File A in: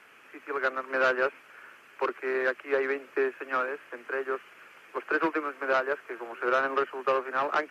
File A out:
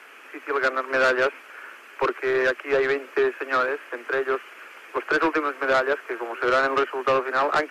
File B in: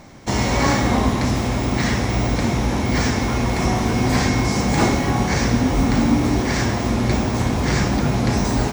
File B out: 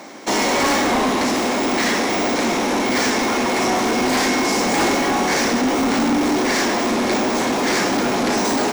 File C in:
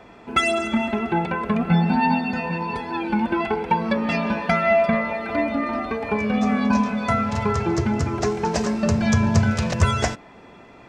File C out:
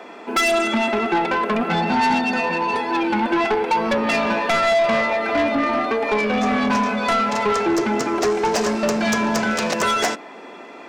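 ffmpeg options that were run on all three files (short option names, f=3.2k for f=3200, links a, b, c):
-af "highpass=f=260:w=0.5412,highpass=f=260:w=1.3066,asoftclip=type=tanh:threshold=-23dB,volume=8.5dB"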